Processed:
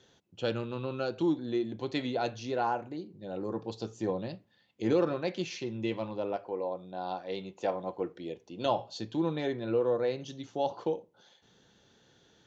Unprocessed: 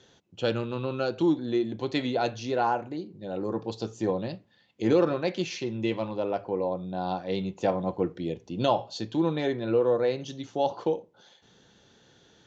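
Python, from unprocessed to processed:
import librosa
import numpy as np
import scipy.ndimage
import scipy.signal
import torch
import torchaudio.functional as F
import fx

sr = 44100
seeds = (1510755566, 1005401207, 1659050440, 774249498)

y = fx.bass_treble(x, sr, bass_db=-11, treble_db=-1, at=(6.36, 8.66))
y = y * librosa.db_to_amplitude(-4.5)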